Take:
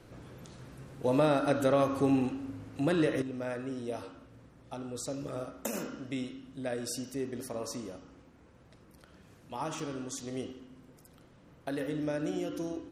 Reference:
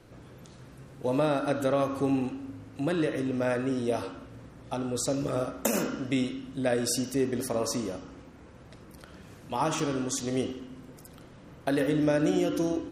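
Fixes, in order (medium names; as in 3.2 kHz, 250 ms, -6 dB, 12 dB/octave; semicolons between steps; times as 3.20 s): trim 0 dB, from 3.22 s +8.5 dB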